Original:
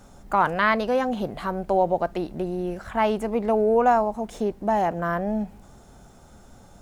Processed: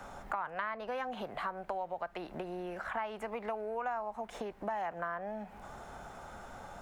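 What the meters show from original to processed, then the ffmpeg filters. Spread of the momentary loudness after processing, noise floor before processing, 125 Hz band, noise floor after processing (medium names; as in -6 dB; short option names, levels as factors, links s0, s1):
11 LU, -50 dBFS, -18.0 dB, -53 dBFS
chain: -filter_complex "[0:a]acrossover=split=160|1300[s0][s1][s2];[s0]acompressor=threshold=0.00631:ratio=4[s3];[s1]acompressor=threshold=0.0316:ratio=4[s4];[s2]acompressor=threshold=0.0178:ratio=4[s5];[s3][s4][s5]amix=inputs=3:normalize=0,acrossover=split=600 2600:gain=0.2 1 0.2[s6][s7][s8];[s6][s7][s8]amix=inputs=3:normalize=0,acompressor=threshold=0.00282:ratio=2.5,volume=3.16"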